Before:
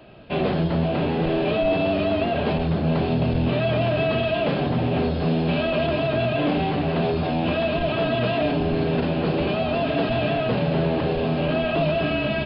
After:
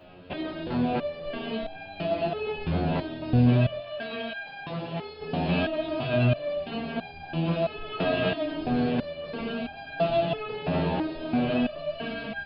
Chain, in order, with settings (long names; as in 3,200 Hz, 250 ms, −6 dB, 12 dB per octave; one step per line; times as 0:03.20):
0:03.80–0:05.21: low-shelf EQ 370 Hz −11 dB
step-sequenced resonator 3 Hz 90–800 Hz
level +7 dB